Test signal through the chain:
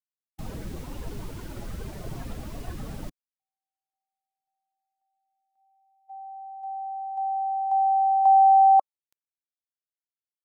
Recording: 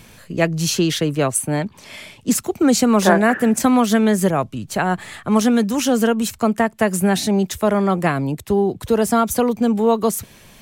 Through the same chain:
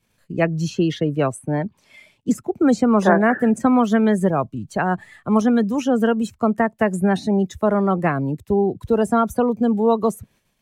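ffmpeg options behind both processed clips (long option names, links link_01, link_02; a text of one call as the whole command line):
ffmpeg -i in.wav -filter_complex "[0:a]agate=range=-12dB:threshold=-44dB:ratio=16:detection=peak,afftdn=noise_reduction=16:noise_floor=-27,acrossover=split=890|2400[link_01][link_02][link_03];[link_03]acompressor=threshold=-38dB:ratio=5[link_04];[link_01][link_02][link_04]amix=inputs=3:normalize=0,volume=-1dB" out.wav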